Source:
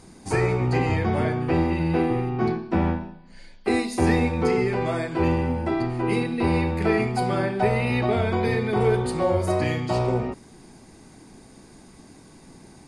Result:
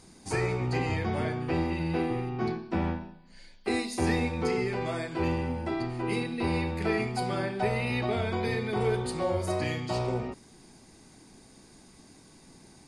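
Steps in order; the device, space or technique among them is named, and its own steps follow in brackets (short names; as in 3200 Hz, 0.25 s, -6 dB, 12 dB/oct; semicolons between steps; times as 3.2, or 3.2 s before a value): presence and air boost (bell 4600 Hz +5 dB 2 oct; high shelf 9200 Hz +4 dB); gain -7 dB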